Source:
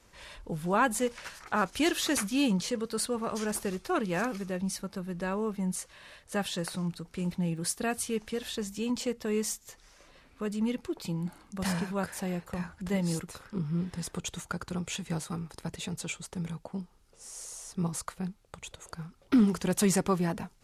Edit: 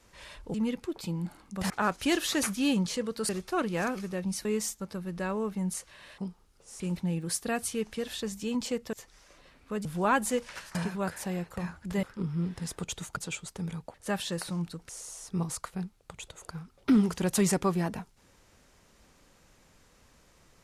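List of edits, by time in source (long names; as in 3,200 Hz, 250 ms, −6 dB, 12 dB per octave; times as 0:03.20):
0:00.54–0:01.44: swap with 0:10.55–0:11.71
0:03.03–0:03.66: remove
0:06.20–0:07.15: swap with 0:16.71–0:17.33
0:09.28–0:09.63: move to 0:04.82
0:12.99–0:13.39: remove
0:14.53–0:15.94: remove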